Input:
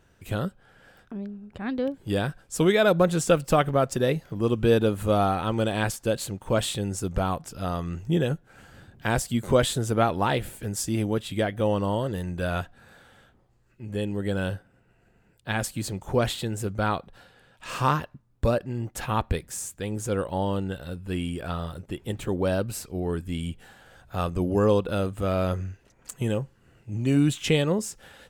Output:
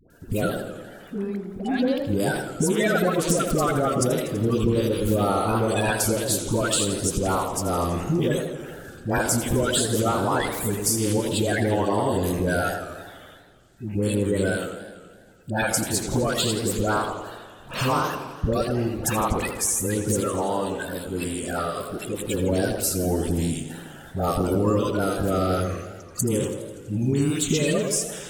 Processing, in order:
spectral magnitudes quantised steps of 30 dB
high-shelf EQ 5,000 Hz +10 dB
all-pass dispersion highs, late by 103 ms, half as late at 660 Hz
downward compressor 5 to 1, threshold −26 dBFS, peak gain reduction 10.5 dB
0:20.20–0:22.34: low-shelf EQ 250 Hz −9.5 dB
feedback echo with a band-pass in the loop 108 ms, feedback 45%, band-pass 420 Hz, level −5 dB
feedback echo with a swinging delay time 83 ms, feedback 71%, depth 171 cents, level −11 dB
level +6 dB

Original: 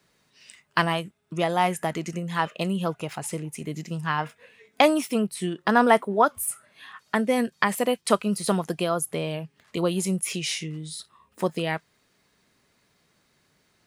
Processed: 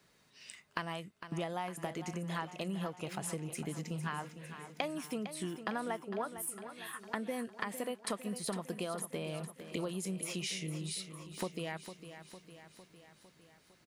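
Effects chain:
downward compressor 6 to 1, threshold −34 dBFS, peak gain reduction 19.5 dB
repeating echo 455 ms, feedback 59%, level −11 dB
level −2 dB

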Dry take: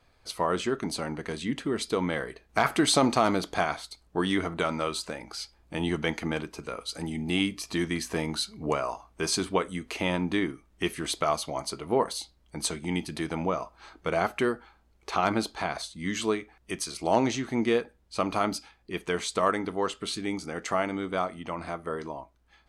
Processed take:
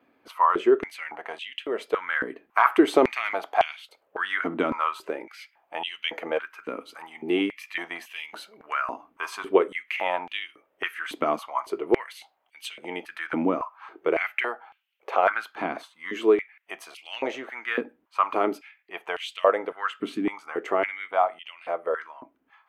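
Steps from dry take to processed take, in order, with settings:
flat-topped bell 6,300 Hz −15.5 dB
high-pass on a step sequencer 3.6 Hz 270–2,900 Hz

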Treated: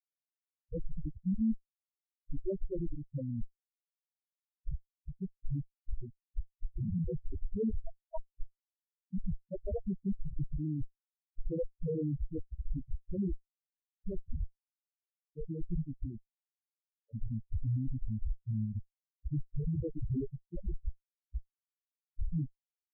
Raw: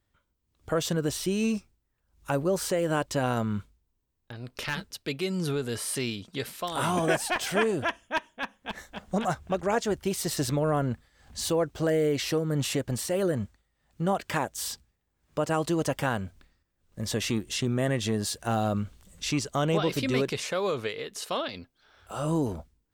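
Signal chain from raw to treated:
backwards echo 270 ms −24 dB
comparator with hysteresis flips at −22.5 dBFS
spectral peaks only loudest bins 2
level +4 dB

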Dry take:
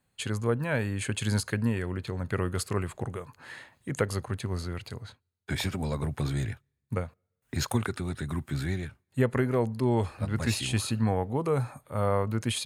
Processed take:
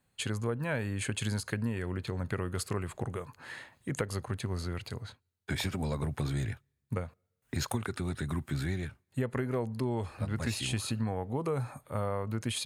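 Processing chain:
downward compressor 4 to 1, threshold −29 dBFS, peak gain reduction 9 dB

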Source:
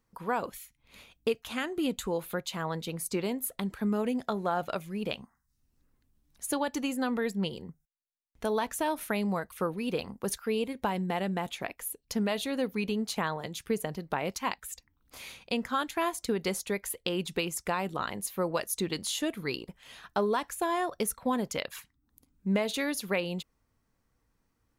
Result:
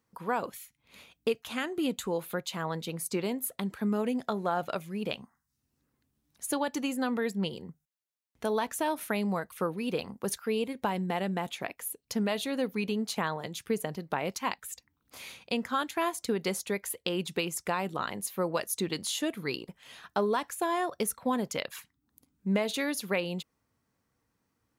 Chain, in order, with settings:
high-pass filter 93 Hz 12 dB per octave

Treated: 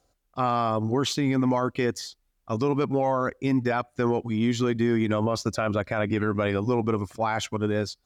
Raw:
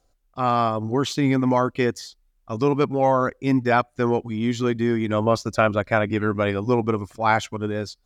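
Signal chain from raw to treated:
high-pass filter 53 Hz
brickwall limiter −16.5 dBFS, peak gain reduction 11.5 dB
level +1 dB

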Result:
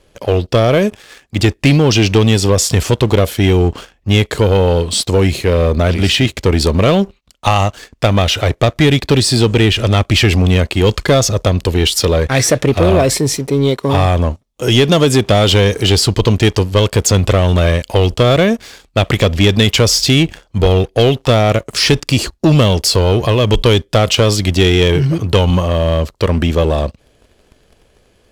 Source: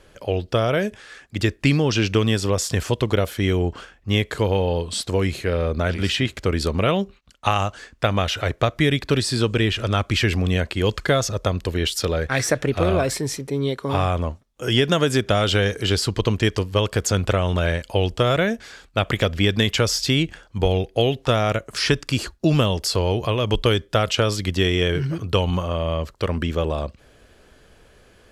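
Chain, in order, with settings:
parametric band 1,500 Hz −7 dB 0.69 octaves
leveller curve on the samples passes 2
level +3.5 dB

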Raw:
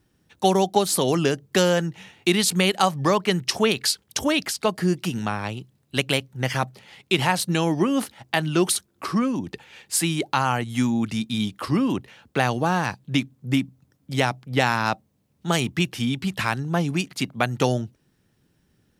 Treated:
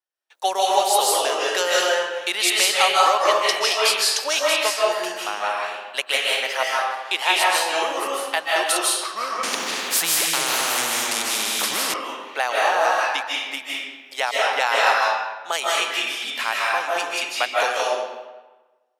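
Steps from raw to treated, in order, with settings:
noise gate with hold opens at −51 dBFS
high-pass filter 570 Hz 24 dB per octave
convolution reverb RT60 1.2 s, pre-delay 115 ms, DRR −5.5 dB
0:09.43–0:11.94: every bin compressed towards the loudest bin 4 to 1

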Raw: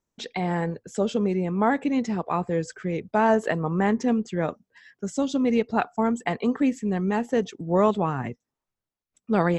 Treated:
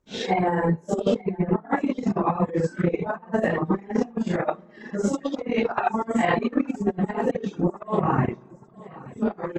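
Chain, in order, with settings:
random phases in long frames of 200 ms
convolution reverb RT60 1.5 s, pre-delay 3 ms, DRR 13 dB
transient designer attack +7 dB, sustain −9 dB
compressor whose output falls as the input rises −27 dBFS, ratio −0.5
0:04.15–0:06.55: tilt shelving filter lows −3.5 dB, about 660 Hz
repeating echo 878 ms, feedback 58%, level −20 dB
reverb reduction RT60 1 s
high-shelf EQ 2,900 Hz −12 dB
level +5.5 dB

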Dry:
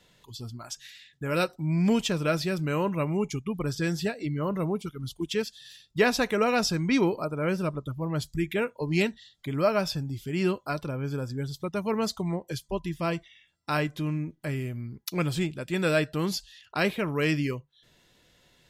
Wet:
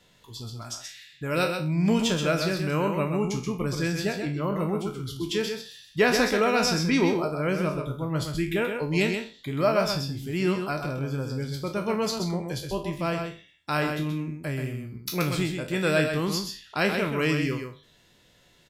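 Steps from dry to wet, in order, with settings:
peak hold with a decay on every bin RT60 0.34 s
single-tap delay 129 ms −6 dB

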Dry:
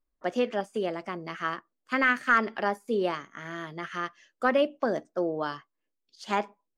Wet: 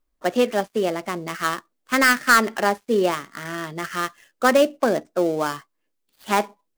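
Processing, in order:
gap after every zero crossing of 0.1 ms
level +7.5 dB

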